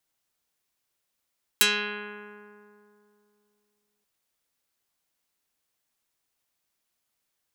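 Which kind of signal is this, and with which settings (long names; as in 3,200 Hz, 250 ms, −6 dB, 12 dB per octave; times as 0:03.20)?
Karplus-Strong string G#3, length 2.43 s, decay 2.82 s, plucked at 0.35, dark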